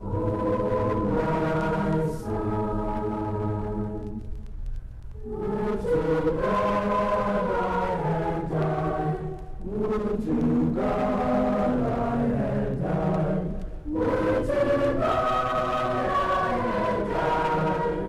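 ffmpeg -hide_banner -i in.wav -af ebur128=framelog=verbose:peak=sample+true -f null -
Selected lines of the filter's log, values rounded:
Integrated loudness:
  I:         -25.8 LUFS
  Threshold: -36.1 LUFS
Loudness range:
  LRA:         4.9 LU
  Threshold: -46.3 LUFS
  LRA low:   -29.5 LUFS
  LRA high:  -24.6 LUFS
Sample peak:
  Peak:      -14.6 dBFS
True peak:
  Peak:      -14.5 dBFS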